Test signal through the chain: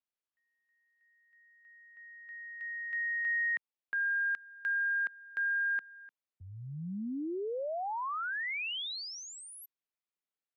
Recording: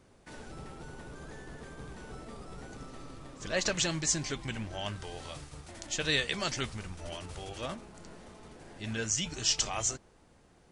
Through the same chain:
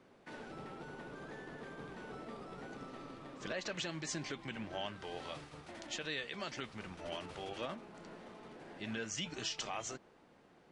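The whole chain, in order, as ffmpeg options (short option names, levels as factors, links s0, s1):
-filter_complex "[0:a]acrossover=split=150 4200:gain=0.141 1 0.2[s0][s1][s2];[s0][s1][s2]amix=inputs=3:normalize=0,alimiter=level_in=1.58:limit=0.0631:level=0:latency=1:release=258,volume=0.631"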